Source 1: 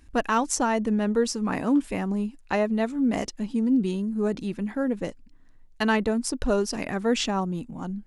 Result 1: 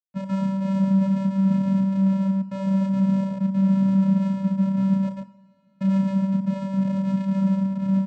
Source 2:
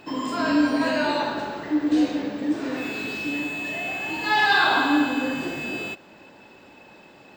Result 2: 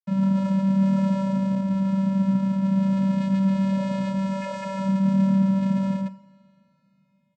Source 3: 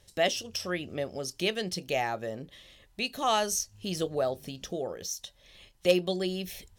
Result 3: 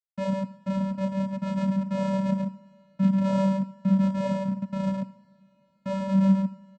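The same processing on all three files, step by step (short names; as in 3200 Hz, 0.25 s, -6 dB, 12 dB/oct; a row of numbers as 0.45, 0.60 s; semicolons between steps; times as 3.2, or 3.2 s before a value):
Chebyshev low-pass 2600 Hz, order 6; low-pass opened by the level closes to 1600 Hz, open at -20 dBFS; reverb removal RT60 0.53 s; expander -48 dBFS; dynamic EQ 1200 Hz, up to -5 dB, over -40 dBFS, Q 0.73; Schmitt trigger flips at -35 dBFS; on a send: loudspeakers at several distances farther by 11 m -2 dB, 29 m -12 dB, 48 m -2 dB; on the sum: soft clip -21.5 dBFS; vocoder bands 8, square 193 Hz; two-slope reverb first 0.59 s, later 4.8 s, from -21 dB, DRR 11.5 dB; normalise peaks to -12 dBFS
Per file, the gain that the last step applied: +6.0, +3.5, +10.0 dB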